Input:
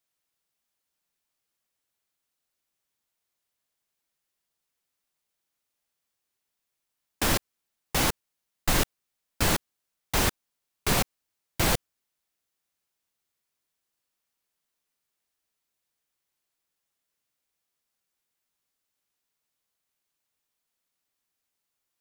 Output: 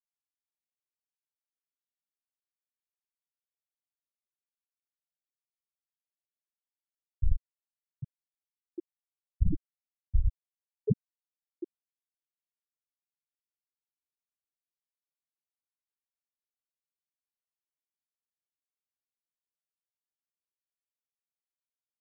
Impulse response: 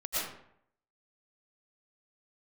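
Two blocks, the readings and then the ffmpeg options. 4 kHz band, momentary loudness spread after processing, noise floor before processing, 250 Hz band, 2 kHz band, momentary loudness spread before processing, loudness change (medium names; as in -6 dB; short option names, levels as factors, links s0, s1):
under -40 dB, 15 LU, -83 dBFS, -7.0 dB, under -40 dB, 7 LU, -7.0 dB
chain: -af "afftfilt=real='re*pow(10,18/40*sin(2*PI*(1.1*log(max(b,1)*sr/1024/100)/log(2)-(-0.36)*(pts-256)/sr)))':imag='im*pow(10,18/40*sin(2*PI*(1.1*log(max(b,1)*sr/1024/100)/log(2)-(-0.36)*(pts-256)/sr)))':win_size=1024:overlap=0.75,afftfilt=real='re*gte(hypot(re,im),0.708)':imag='im*gte(hypot(re,im),0.708)':win_size=1024:overlap=0.75,acompressor=threshold=0.0708:ratio=4,volume=1.58"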